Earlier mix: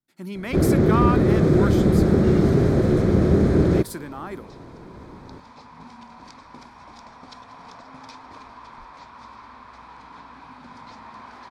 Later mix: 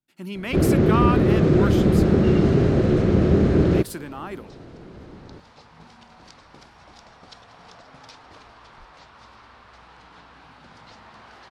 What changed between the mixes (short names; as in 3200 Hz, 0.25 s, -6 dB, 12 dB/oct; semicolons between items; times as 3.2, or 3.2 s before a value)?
first sound: add LPF 6700 Hz 12 dB/oct; second sound: add thirty-one-band EQ 250 Hz -11 dB, 1000 Hz -11 dB, 2500 Hz -7 dB; master: add bell 2800 Hz +11.5 dB 0.24 oct